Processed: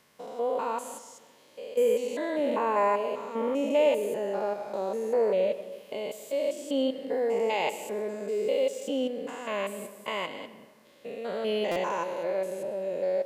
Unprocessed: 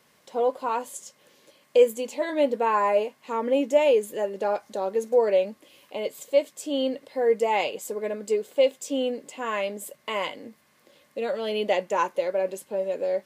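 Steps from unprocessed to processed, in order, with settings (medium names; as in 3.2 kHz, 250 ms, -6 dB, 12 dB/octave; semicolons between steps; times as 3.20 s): spectrogram pixelated in time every 200 ms; algorithmic reverb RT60 1.3 s, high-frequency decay 0.5×, pre-delay 80 ms, DRR 13 dB; buffer glitch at 11.71 s, samples 256, times 8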